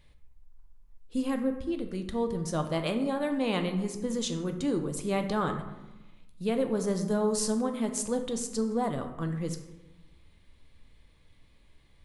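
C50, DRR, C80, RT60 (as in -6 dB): 9.0 dB, 5.5 dB, 11.0 dB, 1.0 s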